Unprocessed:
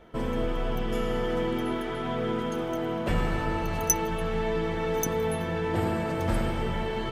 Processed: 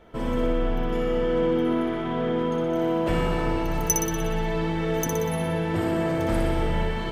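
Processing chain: 0.47–2.76 s: treble shelf 5 kHz -11 dB; flutter echo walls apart 10.4 m, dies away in 0.85 s

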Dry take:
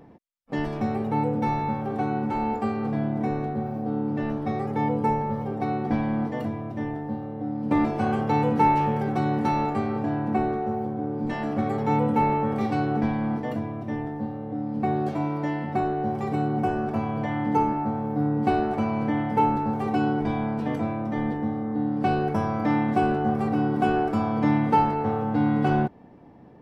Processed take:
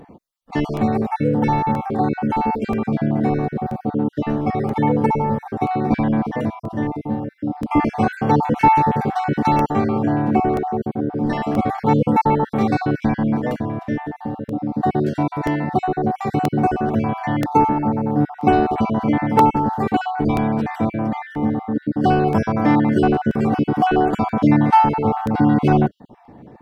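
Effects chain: random holes in the spectrogram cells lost 33%; crackling interface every 0.98 s, samples 64, repeat, from 0.77 s; trim +8 dB

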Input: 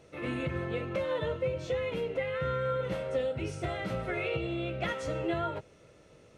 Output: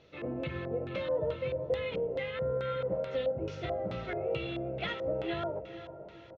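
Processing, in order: resampled via 16 kHz; echo that smears into a reverb 487 ms, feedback 44%, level -11.5 dB; LFO low-pass square 2.3 Hz 650–3800 Hz; trim -4 dB

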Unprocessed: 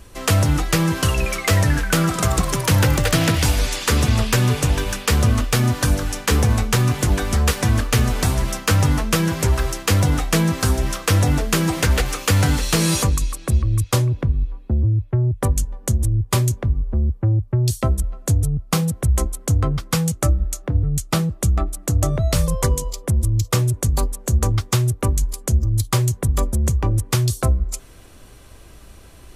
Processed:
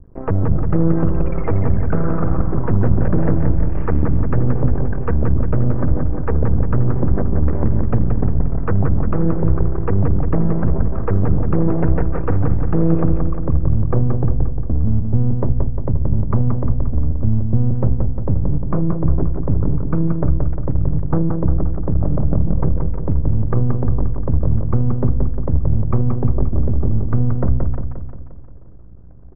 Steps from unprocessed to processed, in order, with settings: resonances exaggerated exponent 2; high-pass 40 Hz 6 dB/octave; peaking EQ 91 Hz -3 dB 0.77 oct; in parallel at 0 dB: peak limiter -13.5 dBFS, peak gain reduction 7 dB; on the sum: half-wave rectifier; Gaussian low-pass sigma 6.5 samples; on a send: feedback delay 176 ms, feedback 55%, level -5 dB; on the sum: trim +1 dB

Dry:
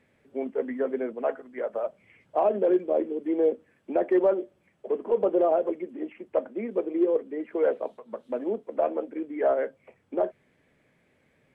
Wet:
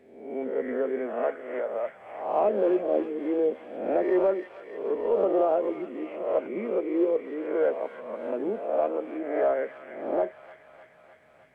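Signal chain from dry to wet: reverse spectral sustain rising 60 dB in 0.78 s; feedback echo behind a high-pass 304 ms, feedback 69%, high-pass 2 kHz, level -3.5 dB; trim -2.5 dB

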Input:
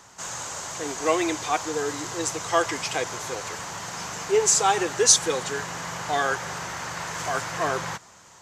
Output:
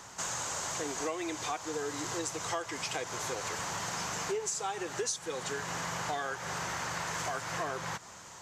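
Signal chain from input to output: compression 8:1, threshold -34 dBFS, peak gain reduction 22 dB; trim +1.5 dB

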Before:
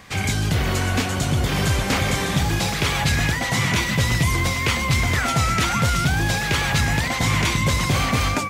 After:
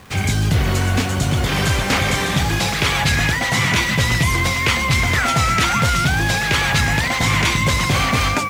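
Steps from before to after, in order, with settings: send-on-delta sampling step -41 dBFS; peaking EQ 78 Hz +3.5 dB 2.9 oct, from 1.31 s 2 kHz; trim +1.5 dB

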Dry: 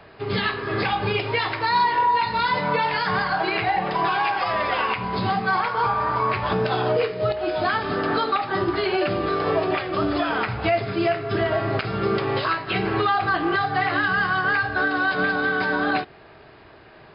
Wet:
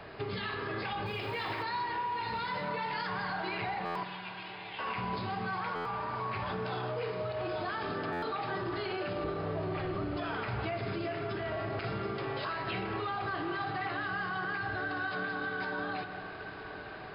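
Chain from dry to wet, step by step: 9.24–10.17 s: tilt EQ -3 dB/octave; peak limiter -22.5 dBFS, peak gain reduction 13.5 dB; compression 3:1, threshold -35 dBFS, peak gain reduction 7 dB; 1.06–1.63 s: short-mantissa float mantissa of 4-bit; 4.03–4.79 s: Butterworth band-pass 3.1 kHz, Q 1.9; echo that smears into a reverb 1033 ms, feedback 47%, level -11.5 dB; spring tank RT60 2.6 s, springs 49 ms, chirp 75 ms, DRR 8.5 dB; buffer glitch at 3.85/5.75/8.12 s, samples 512, times 8

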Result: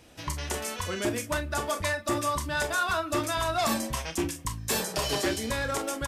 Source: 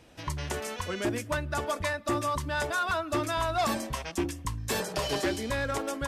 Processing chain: treble shelf 5 kHz +7 dB; on a send: early reflections 31 ms -9.5 dB, 44 ms -12 dB

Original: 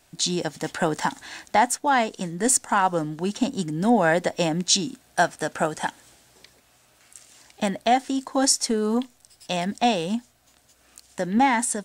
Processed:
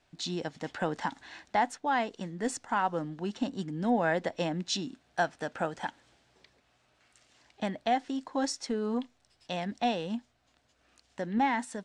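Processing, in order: low-pass 4.3 kHz 12 dB/octave; trim -8 dB

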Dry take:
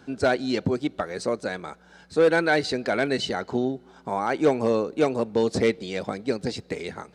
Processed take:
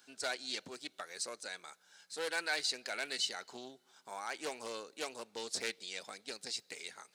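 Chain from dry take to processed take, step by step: differentiator; loudspeaker Doppler distortion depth 0.17 ms; trim +1.5 dB

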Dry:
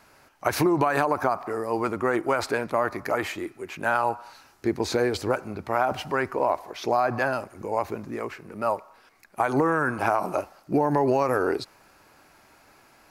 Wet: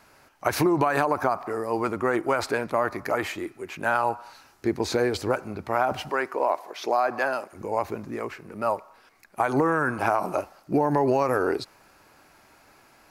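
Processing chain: 6.09–7.53 s: high-pass 320 Hz 12 dB/octave

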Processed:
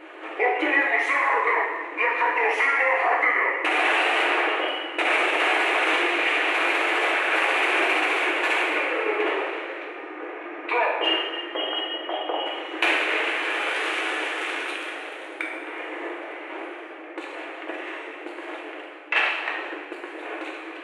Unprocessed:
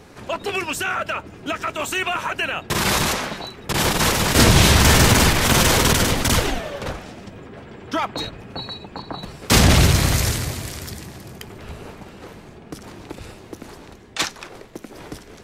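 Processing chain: resonant high shelf 4.8 kHz -14 dB, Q 3; compression 12:1, threshold -23 dBFS, peak gain reduction 15.5 dB; two-slope reverb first 0.83 s, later 2.6 s, from -18 dB, DRR -3 dB; speed mistake 45 rpm record played at 33 rpm; brick-wall FIR high-pass 300 Hz; trim +2 dB

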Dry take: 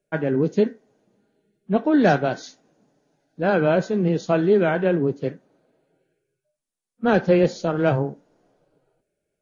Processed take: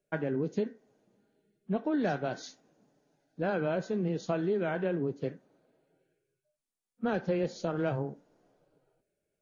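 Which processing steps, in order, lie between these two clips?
compression 3:1, threshold -24 dBFS, peak gain reduction 9 dB; trim -5 dB

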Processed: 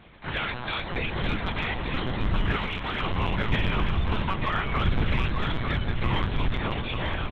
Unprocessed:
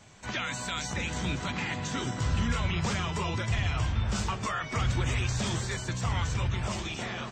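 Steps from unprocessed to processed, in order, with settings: LPC vocoder at 8 kHz pitch kept; delay 895 ms -6 dB; in parallel at -6 dB: hard clipper -23 dBFS, distortion -16 dB; 2.56–3.02 s: on the sum: bass shelf 450 Hz -8.5 dB; on a send at -17.5 dB: reverberation RT60 0.75 s, pre-delay 124 ms

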